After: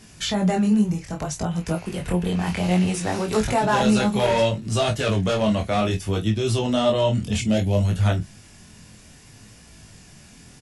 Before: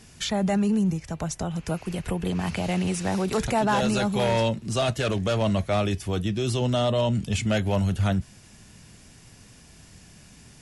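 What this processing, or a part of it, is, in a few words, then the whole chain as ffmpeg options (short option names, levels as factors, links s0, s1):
double-tracked vocal: -filter_complex "[0:a]asplit=2[s0][s1];[s1]adelay=28,volume=0.355[s2];[s0][s2]amix=inputs=2:normalize=0,flanger=delay=18:depth=6:speed=0.62,asettb=1/sr,asplit=3[s3][s4][s5];[s3]atrim=end=7.414[s6];[s4]atrim=start=7.41:end=7.85,asetpts=PTS-STARTPTS,afade=t=in:d=0.004:c=qsin,afade=t=out:st=0.436:d=0.004:c=qsin,equalizer=f=1400:t=o:w=1.3:g=-11[s7];[s5]atrim=start=7.846[s8];[s6][s7]acrossfade=d=0.004:c1=hsin:c2=qsin[s9];[s9][s8]acrossfade=d=0.004:c1=qsin:c2=hsin,volume=1.88"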